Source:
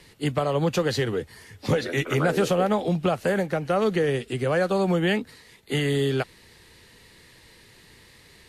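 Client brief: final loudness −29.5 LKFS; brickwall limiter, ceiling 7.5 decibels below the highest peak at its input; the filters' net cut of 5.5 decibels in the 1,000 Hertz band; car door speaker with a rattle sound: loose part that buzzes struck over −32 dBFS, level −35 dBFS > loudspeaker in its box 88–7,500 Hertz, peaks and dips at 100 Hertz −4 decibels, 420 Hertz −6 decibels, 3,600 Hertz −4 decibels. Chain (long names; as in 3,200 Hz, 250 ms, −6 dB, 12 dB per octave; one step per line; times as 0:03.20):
parametric band 1,000 Hz −8 dB
brickwall limiter −19.5 dBFS
loose part that buzzes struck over −32 dBFS, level −35 dBFS
loudspeaker in its box 88–7,500 Hz, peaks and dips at 100 Hz −4 dB, 420 Hz −6 dB, 3,600 Hz −4 dB
level +1 dB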